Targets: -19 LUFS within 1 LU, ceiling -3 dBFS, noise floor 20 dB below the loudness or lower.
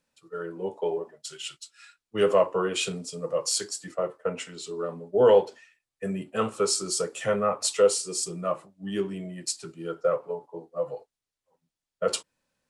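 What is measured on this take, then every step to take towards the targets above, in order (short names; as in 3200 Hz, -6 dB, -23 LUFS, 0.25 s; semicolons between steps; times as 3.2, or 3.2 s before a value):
loudness -27.5 LUFS; peak -9.0 dBFS; loudness target -19.0 LUFS
-> gain +8.5 dB; limiter -3 dBFS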